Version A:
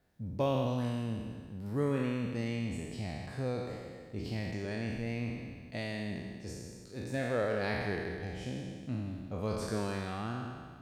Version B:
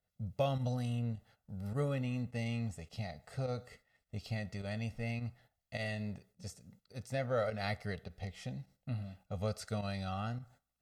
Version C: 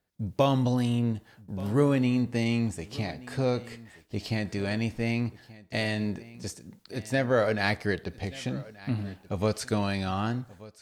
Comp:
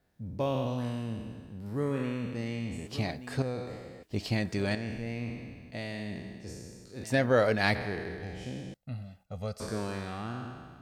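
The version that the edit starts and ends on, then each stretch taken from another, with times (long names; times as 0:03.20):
A
0:02.87–0:03.42: punch in from C
0:04.03–0:04.75: punch in from C
0:07.04–0:07.75: punch in from C
0:08.74–0:09.60: punch in from B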